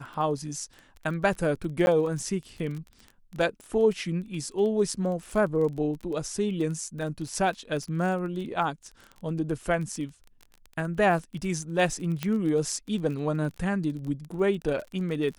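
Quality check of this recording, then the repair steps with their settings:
crackle 21 per s -34 dBFS
1.86–1.87 s: dropout 11 ms
12.23 s: pop -14 dBFS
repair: de-click; interpolate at 1.86 s, 11 ms

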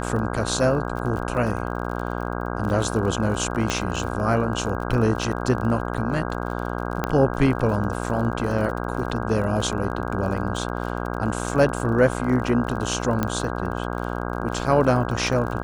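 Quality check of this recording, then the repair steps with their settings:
buzz 60 Hz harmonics 27 -28 dBFS
crackle 40 per s -31 dBFS
3.70 s: pop -9 dBFS
7.04 s: pop -9 dBFS
13.23 s: pop -9 dBFS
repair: de-click; de-hum 60 Hz, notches 27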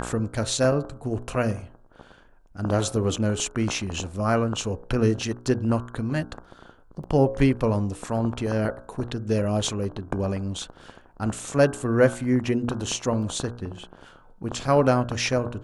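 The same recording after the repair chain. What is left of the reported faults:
7.04 s: pop
13.23 s: pop

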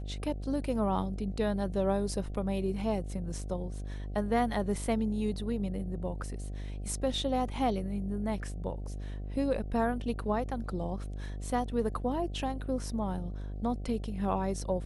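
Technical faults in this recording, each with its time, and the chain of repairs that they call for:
buzz 50 Hz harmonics 15 -38 dBFS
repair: de-hum 50 Hz, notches 15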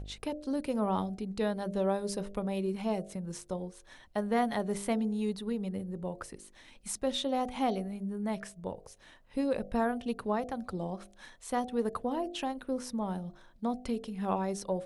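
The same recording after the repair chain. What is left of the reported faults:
nothing left

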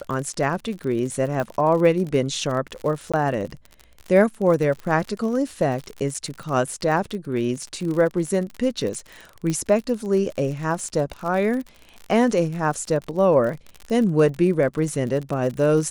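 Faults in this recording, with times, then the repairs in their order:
crackle 55 per s -29 dBFS
1.40 s: pop -14 dBFS
3.12–3.14 s: dropout 16 ms
6.14–6.15 s: dropout 5.9 ms
9.50 s: pop -13 dBFS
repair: de-click; interpolate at 3.12 s, 16 ms; interpolate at 6.14 s, 5.9 ms

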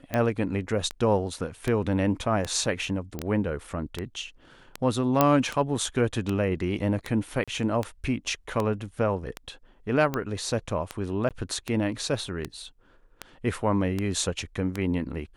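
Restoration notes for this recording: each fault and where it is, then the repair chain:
tick 78 rpm -14 dBFS
3.19 s: pop -18 dBFS
5.21 s: pop -5 dBFS
7.44–7.48 s: dropout 36 ms
11.29–11.31 s: dropout 17 ms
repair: de-click; interpolate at 7.44 s, 36 ms; interpolate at 11.29 s, 17 ms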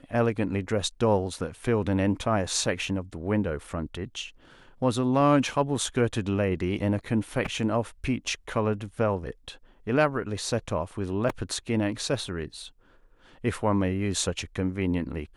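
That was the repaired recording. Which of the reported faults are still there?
nothing left

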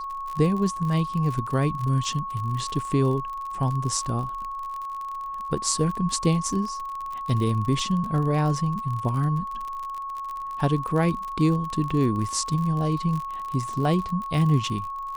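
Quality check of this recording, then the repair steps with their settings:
crackle 47 per s -30 dBFS
whine 1.1 kHz -30 dBFS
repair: de-click; band-stop 1.1 kHz, Q 30

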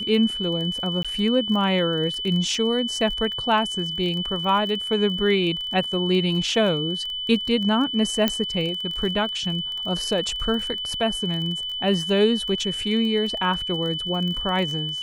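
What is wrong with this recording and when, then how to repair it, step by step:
crackle 22 per s -29 dBFS
whine 3 kHz -27 dBFS
1.03–1.05 s: dropout 16 ms
8.28 s: pop -6 dBFS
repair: de-click; band-stop 3 kHz, Q 30; interpolate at 1.03 s, 16 ms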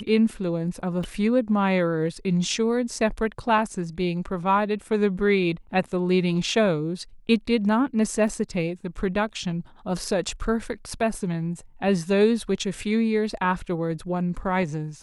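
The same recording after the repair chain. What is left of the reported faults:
8.28 s: pop

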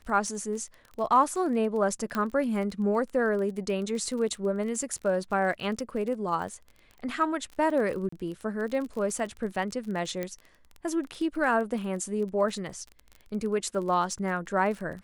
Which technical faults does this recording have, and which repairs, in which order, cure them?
crackle 27 per s -35 dBFS
2.15 s: pop -17 dBFS
8.09–8.12 s: dropout 34 ms
10.23 s: pop -18 dBFS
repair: de-click; interpolate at 8.09 s, 34 ms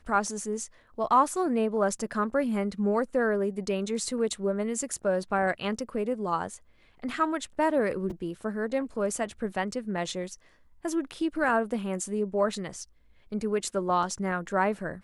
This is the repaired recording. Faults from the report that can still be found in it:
nothing left

